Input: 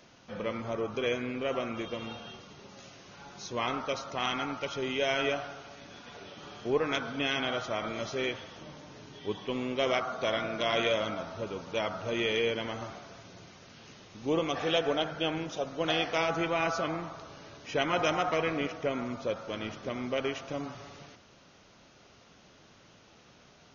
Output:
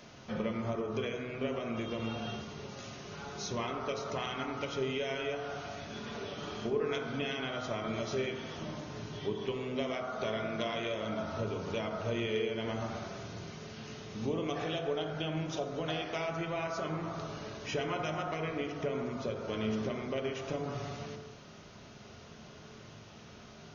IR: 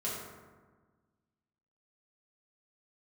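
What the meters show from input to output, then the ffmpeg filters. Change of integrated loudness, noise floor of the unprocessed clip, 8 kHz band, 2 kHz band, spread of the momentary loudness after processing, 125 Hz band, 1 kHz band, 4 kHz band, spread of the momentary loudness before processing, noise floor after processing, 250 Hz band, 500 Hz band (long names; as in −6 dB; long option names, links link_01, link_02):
−4.5 dB, −58 dBFS, can't be measured, −6.0 dB, 11 LU, +2.5 dB, −5.0 dB, −6.5 dB, 20 LU, −52 dBFS, −1.5 dB, −3.5 dB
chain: -filter_complex "[0:a]acompressor=threshold=-38dB:ratio=6,asplit=2[link_01][link_02];[1:a]atrim=start_sample=2205,afade=type=out:start_time=0.31:duration=0.01,atrim=end_sample=14112,lowshelf=frequency=360:gain=8.5[link_03];[link_02][link_03]afir=irnorm=-1:irlink=0,volume=-7.5dB[link_04];[link_01][link_04]amix=inputs=2:normalize=0,volume=1dB"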